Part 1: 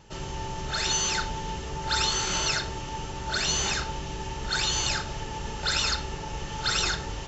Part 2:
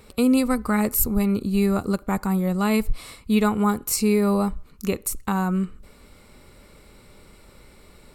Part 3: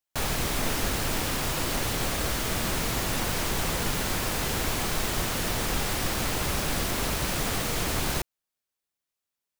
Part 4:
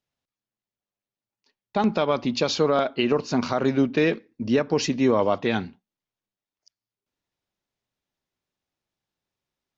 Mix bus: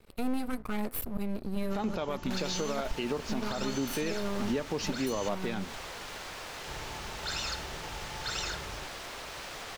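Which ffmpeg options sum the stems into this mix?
-filter_complex "[0:a]adelay=1600,volume=0.335,asplit=3[s0][s1][s2];[s0]atrim=end=5.29,asetpts=PTS-STARTPTS,afade=t=out:st=5.286:d=0.004:c=hsin[s3];[s1]atrim=start=5.29:end=6.67,asetpts=PTS-STARTPTS,volume=0[s4];[s2]atrim=start=6.67,asetpts=PTS-STARTPTS,afade=t=in:d=0.004:c=hsin[s5];[s3][s4][s5]concat=n=3:v=0:a=1[s6];[1:a]equalizer=f=6800:w=1.9:g=-11.5,aeval=exprs='max(val(0),0)':c=same,volume=0.501[s7];[2:a]acrossover=split=400 6700:gain=0.0794 1 0.224[s8][s9][s10];[s8][s9][s10]amix=inputs=3:normalize=0,acrossover=split=170[s11][s12];[s12]acompressor=threshold=0.01:ratio=6[s13];[s11][s13]amix=inputs=2:normalize=0,adelay=2150,volume=1[s14];[3:a]volume=0.531[s15];[s6][s7][s14][s15]amix=inputs=4:normalize=0,alimiter=limit=0.0794:level=0:latency=1:release=184"

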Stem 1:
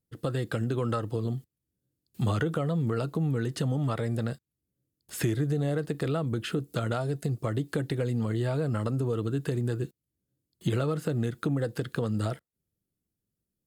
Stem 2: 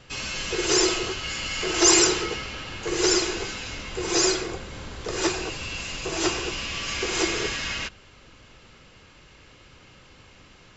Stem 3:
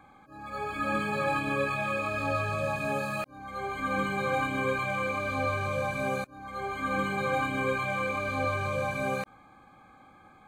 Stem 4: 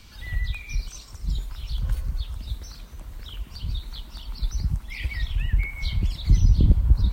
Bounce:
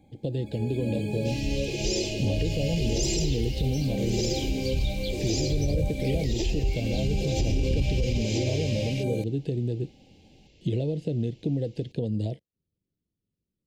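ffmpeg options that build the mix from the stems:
-filter_complex "[0:a]lowpass=3600,volume=1.12[s0];[1:a]lowpass=6000,adelay=1150,volume=0.562[s1];[2:a]lowshelf=f=450:g=6,volume=0.841[s2];[3:a]dynaudnorm=f=350:g=13:m=3.76,adelay=1100,volume=0.596[s3];[s0][s1][s2][s3]amix=inputs=4:normalize=0,asuperstop=centerf=1300:order=4:qfactor=0.56,alimiter=limit=0.141:level=0:latency=1:release=27"

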